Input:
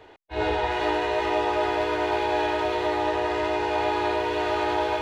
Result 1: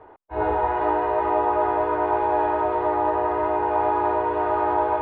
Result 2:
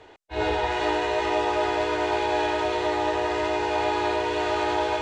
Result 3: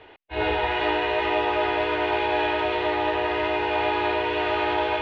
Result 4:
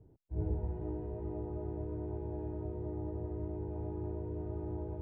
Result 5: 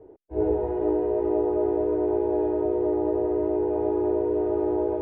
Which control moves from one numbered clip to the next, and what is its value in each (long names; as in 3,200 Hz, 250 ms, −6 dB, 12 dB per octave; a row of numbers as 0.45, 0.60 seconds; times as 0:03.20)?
low-pass with resonance, frequency: 1,100, 7,800, 2,900, 160, 410 Hertz